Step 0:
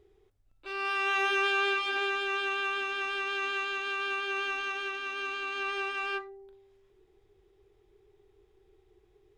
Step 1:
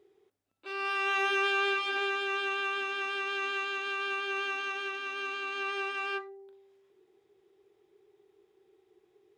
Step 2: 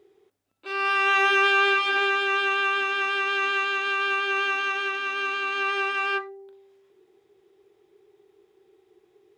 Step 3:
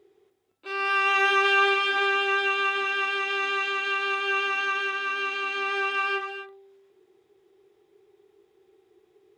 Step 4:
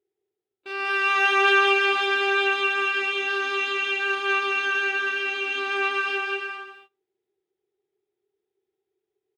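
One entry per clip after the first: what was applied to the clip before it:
Chebyshev high-pass filter 240 Hz, order 2
dynamic equaliser 1,500 Hz, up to +4 dB, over −42 dBFS, Q 0.71; level +5.5 dB
reverb whose tail is shaped and stops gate 290 ms rising, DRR 8 dB; level −1.5 dB
notch filter 1,100 Hz, Q 7.5; on a send: bouncing-ball delay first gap 190 ms, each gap 0.65×, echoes 5; on the sum: noise gate −49 dBFS, range −22 dB

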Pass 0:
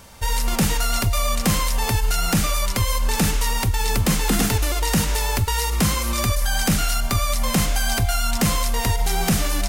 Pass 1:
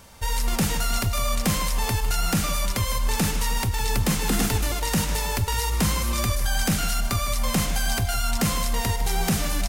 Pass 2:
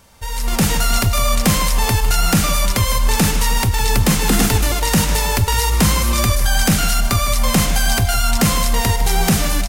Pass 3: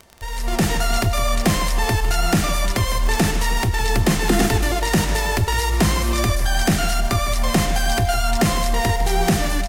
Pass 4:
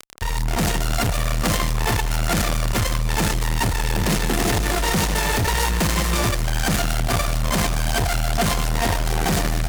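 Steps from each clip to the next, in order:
repeating echo 155 ms, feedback 49%, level −13 dB; level −3.5 dB
automatic gain control gain up to 11 dB; level −1.5 dB
high-shelf EQ 9,000 Hz −8 dB; hollow resonant body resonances 360/680/1,800 Hz, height 10 dB, ringing for 45 ms; surface crackle 41 per second −21 dBFS; level −3.5 dB
fuzz pedal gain 33 dB, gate −37 dBFS; on a send: echo with a time of its own for lows and highs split 1,200 Hz, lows 149 ms, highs 468 ms, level −9 dB; on the sum: saturating transformer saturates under 120 Hz; level −4 dB

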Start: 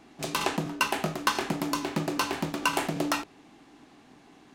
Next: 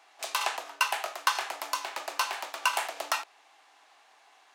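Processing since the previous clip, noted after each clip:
high-pass filter 660 Hz 24 dB per octave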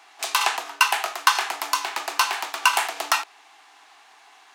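parametric band 560 Hz −13.5 dB 0.28 octaves
level +8.5 dB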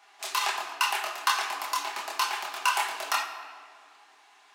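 multi-voice chorus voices 6, 1.3 Hz, delay 26 ms, depth 3 ms
rectangular room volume 3,900 cubic metres, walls mixed, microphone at 1.3 metres
level −4 dB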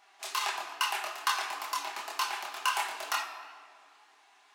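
tape wow and flutter 41 cents
level −4 dB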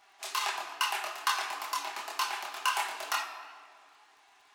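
surface crackle 44 per second −54 dBFS

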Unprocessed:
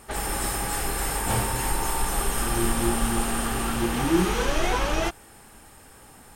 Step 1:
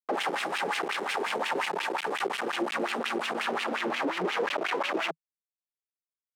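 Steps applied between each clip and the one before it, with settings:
comparator with hysteresis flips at −35.5 dBFS
elliptic high-pass filter 160 Hz, stop band 40 dB
LFO wah 5.6 Hz 380–2,900 Hz, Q 2.7
level +6.5 dB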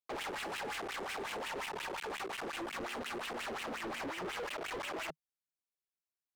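pitch vibrato 0.71 Hz 49 cents
hard clipping −34 dBFS, distortion −6 dB
level −4 dB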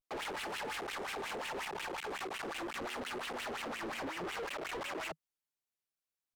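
pitch vibrato 0.39 Hz 60 cents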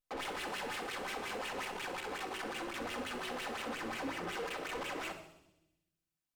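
delay with a high-pass on its return 64 ms, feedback 68%, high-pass 3,900 Hz, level −11 dB
rectangular room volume 2,700 cubic metres, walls furnished, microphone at 2 metres
level −1.5 dB

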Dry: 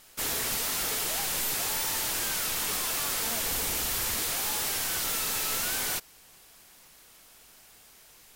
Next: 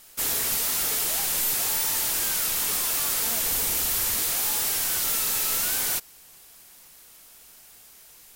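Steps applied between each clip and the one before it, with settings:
high-shelf EQ 6,600 Hz +7.5 dB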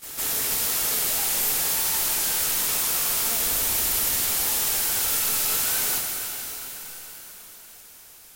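on a send: backwards echo 157 ms −10.5 dB
on the sum: dense smooth reverb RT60 5 s, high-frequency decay 0.95×, DRR 0.5 dB
level −1.5 dB

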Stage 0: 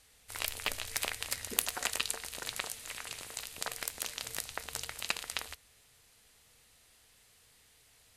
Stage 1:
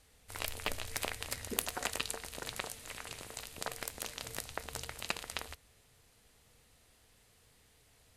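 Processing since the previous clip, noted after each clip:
tilt shelving filter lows +4.5 dB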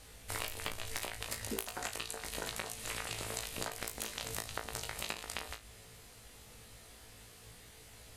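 downward compressor 12 to 1, threshold −45 dBFS, peak gain reduction 19.5 dB
flutter between parallel walls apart 3.1 metres, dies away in 0.21 s
level +9 dB

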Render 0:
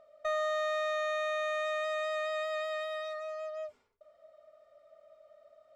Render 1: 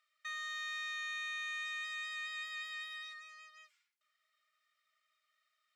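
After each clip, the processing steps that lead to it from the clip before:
inverse Chebyshev high-pass filter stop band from 500 Hz, stop band 60 dB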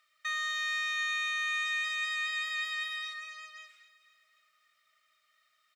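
repeating echo 259 ms, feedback 54%, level −16 dB
level +8.5 dB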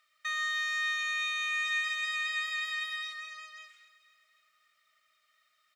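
convolution reverb RT60 0.60 s, pre-delay 113 ms, DRR 12.5 dB

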